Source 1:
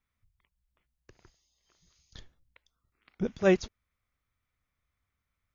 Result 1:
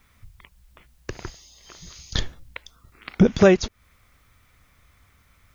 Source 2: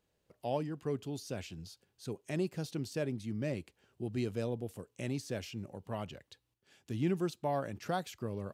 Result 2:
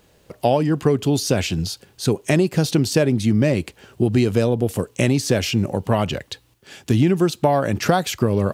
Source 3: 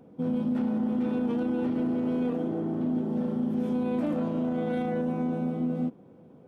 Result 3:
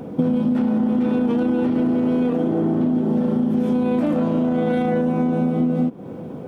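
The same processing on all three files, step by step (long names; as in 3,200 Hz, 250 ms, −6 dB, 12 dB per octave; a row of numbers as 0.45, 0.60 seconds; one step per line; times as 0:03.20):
downward compressor 12 to 1, threshold −36 dBFS
loudness normalisation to −20 LKFS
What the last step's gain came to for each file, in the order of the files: +24.5, +23.5, +20.0 decibels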